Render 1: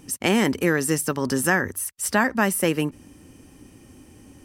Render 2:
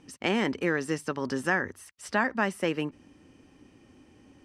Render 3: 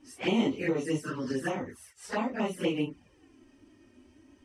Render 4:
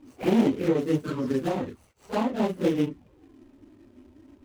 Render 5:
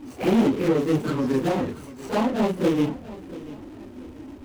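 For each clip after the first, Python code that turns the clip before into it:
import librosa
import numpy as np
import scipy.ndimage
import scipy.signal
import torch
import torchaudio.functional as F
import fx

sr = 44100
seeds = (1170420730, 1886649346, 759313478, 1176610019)

y1 = scipy.signal.sosfilt(scipy.signal.butter(2, 4400.0, 'lowpass', fs=sr, output='sos'), x)
y1 = fx.low_shelf(y1, sr, hz=160.0, db=-8.0)
y1 = y1 * librosa.db_to_amplitude(-5.0)
y2 = fx.phase_scramble(y1, sr, seeds[0], window_ms=100)
y2 = fx.env_flanger(y2, sr, rest_ms=3.5, full_db=-25.0)
y3 = scipy.signal.medfilt(y2, 25)
y3 = y3 * librosa.db_to_amplitude(6.0)
y4 = fx.power_curve(y3, sr, exponent=0.7)
y4 = fx.echo_feedback(y4, sr, ms=686, feedback_pct=34, wet_db=-17.0)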